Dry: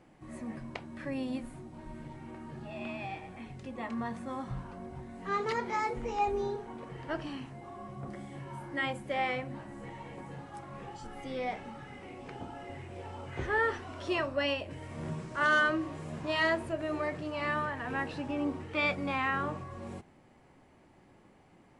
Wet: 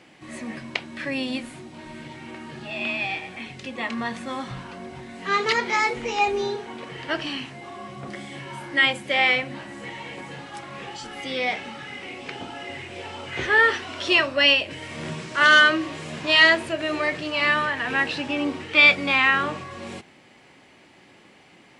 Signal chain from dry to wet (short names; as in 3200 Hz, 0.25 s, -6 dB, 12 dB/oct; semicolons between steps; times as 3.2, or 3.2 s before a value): weighting filter D; gain +7.5 dB